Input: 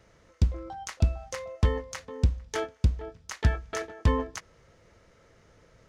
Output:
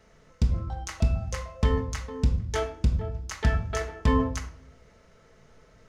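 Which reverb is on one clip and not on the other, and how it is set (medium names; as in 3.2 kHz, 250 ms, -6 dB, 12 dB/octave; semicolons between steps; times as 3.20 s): simulated room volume 790 m³, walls furnished, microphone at 1.5 m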